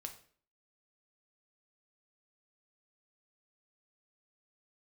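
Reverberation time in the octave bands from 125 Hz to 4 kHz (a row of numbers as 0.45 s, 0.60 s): 0.55 s, 0.55 s, 0.50 s, 0.45 s, 0.45 s, 0.40 s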